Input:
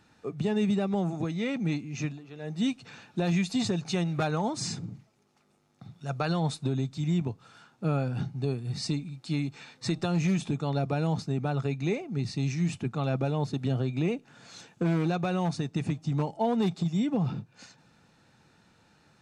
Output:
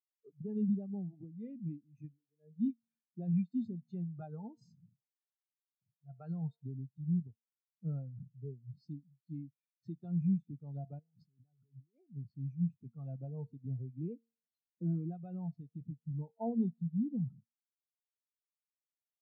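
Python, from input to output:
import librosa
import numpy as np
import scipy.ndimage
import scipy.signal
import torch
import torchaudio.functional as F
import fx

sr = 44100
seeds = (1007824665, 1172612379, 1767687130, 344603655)

y = fx.over_compress(x, sr, threshold_db=-40.0, ratio=-1.0, at=(10.99, 11.98))
y = fx.comb_fb(y, sr, f0_hz=230.0, decay_s=1.0, harmonics='all', damping=0.0, mix_pct=60)
y = fx.spectral_expand(y, sr, expansion=2.5)
y = y * 10.0 ** (1.0 / 20.0)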